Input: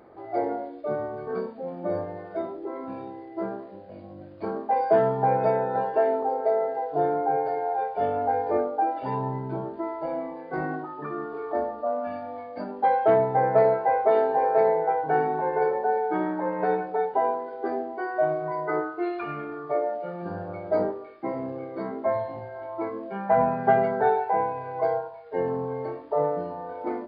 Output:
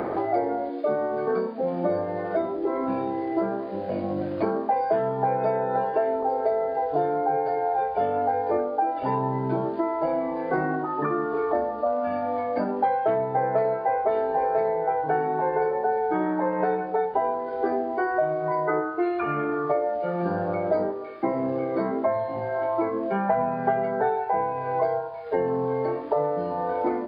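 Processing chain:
0:00.69–0:01.61: high-pass filter 170 Hz 24 dB per octave
multiband upward and downward compressor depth 100%

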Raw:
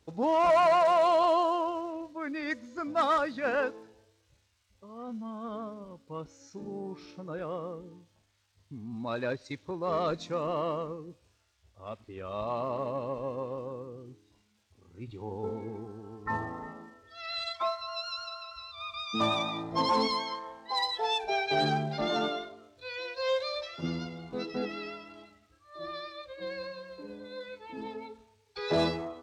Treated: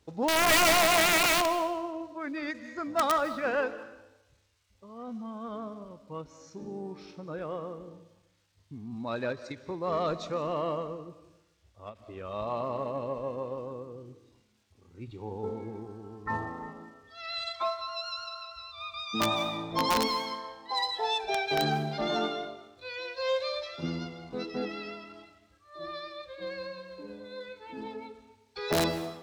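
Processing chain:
wrap-around overflow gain 19 dB
comb and all-pass reverb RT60 0.92 s, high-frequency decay 0.95×, pre-delay 115 ms, DRR 14 dB
every ending faded ahead of time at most 270 dB per second

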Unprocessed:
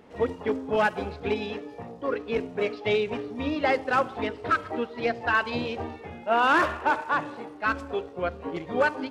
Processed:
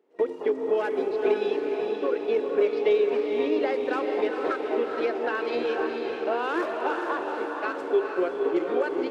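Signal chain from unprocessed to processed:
noise gate with hold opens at −30 dBFS
downward compressor, threshold −29 dBFS, peak gain reduction 11 dB
high-pass with resonance 370 Hz, resonance Q 4.4
on a send: feedback delay with all-pass diffusion 460 ms, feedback 57%, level −4 dB

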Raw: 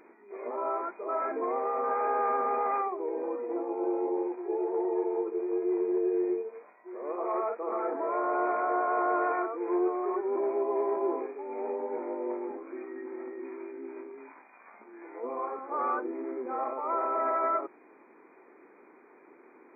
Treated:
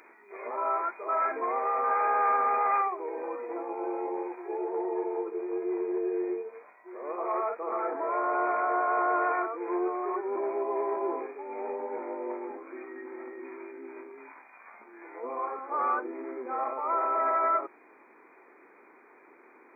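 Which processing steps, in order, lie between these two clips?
tilt shelving filter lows −9.5 dB, about 640 Hz, from 0:04.57 lows −5 dB

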